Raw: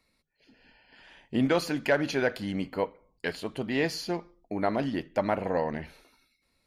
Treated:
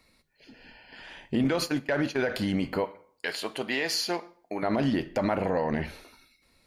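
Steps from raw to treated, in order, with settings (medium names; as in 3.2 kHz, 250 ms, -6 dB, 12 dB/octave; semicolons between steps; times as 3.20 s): 1.44–2.20 s: gate -29 dBFS, range -29 dB; 2.85–4.63 s: high-pass 900 Hz 6 dB/octave; peak limiter -25.5 dBFS, peak gain reduction 12.5 dB; plate-style reverb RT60 0.53 s, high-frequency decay 0.8×, DRR 15 dB; trim +8 dB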